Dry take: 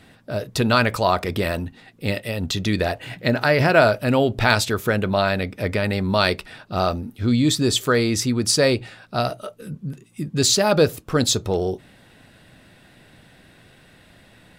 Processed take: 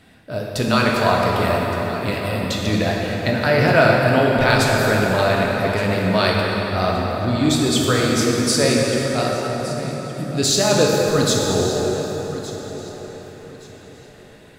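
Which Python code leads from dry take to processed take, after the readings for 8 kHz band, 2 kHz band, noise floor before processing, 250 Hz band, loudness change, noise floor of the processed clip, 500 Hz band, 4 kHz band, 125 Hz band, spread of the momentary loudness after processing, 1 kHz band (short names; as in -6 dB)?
+1.5 dB, +3.0 dB, -52 dBFS, +2.5 dB, +2.0 dB, -43 dBFS, +3.0 dB, +1.5 dB, +3.0 dB, 12 LU, +3.5 dB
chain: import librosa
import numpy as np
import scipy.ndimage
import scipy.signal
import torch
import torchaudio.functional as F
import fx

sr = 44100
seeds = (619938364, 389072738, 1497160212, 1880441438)

y = fx.echo_feedback(x, sr, ms=1168, feedback_pct=27, wet_db=-16.0)
y = fx.rev_plate(y, sr, seeds[0], rt60_s=4.7, hf_ratio=0.6, predelay_ms=0, drr_db=-3.0)
y = y * 10.0 ** (-2.0 / 20.0)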